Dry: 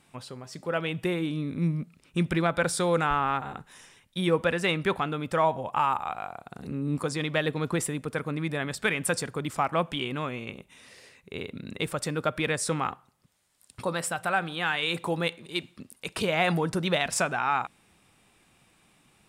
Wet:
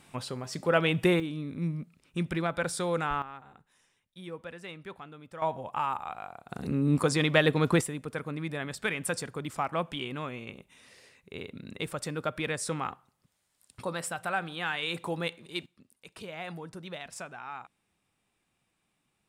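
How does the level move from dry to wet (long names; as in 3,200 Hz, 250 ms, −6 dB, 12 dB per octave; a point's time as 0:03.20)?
+4.5 dB
from 0:01.20 −5 dB
from 0:03.22 −17 dB
from 0:05.42 −5.5 dB
from 0:06.49 +4 dB
from 0:07.81 −4.5 dB
from 0:15.66 −15 dB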